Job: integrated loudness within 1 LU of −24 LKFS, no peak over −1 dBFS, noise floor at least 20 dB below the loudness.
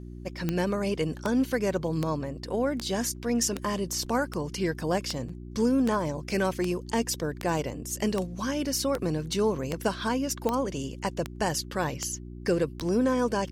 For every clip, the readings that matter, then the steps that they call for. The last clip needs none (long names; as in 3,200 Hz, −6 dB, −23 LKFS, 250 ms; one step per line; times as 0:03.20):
number of clicks 17; mains hum 60 Hz; hum harmonics up to 360 Hz; level of the hum −39 dBFS; integrated loudness −29.0 LKFS; sample peak −12.0 dBFS; target loudness −24.0 LKFS
→ click removal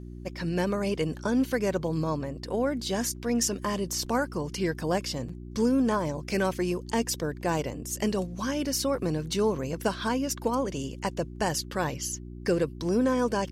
number of clicks 0; mains hum 60 Hz; hum harmonics up to 360 Hz; level of the hum −39 dBFS
→ hum removal 60 Hz, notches 6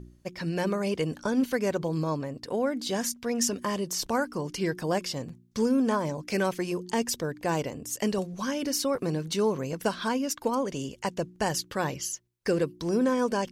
mains hum none found; integrated loudness −29.5 LKFS; sample peak −14.0 dBFS; target loudness −24.0 LKFS
→ level +5.5 dB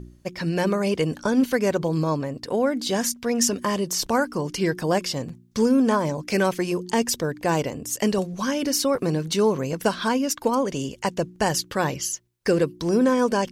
integrated loudness −24.0 LKFS; sample peak −8.5 dBFS; background noise floor −51 dBFS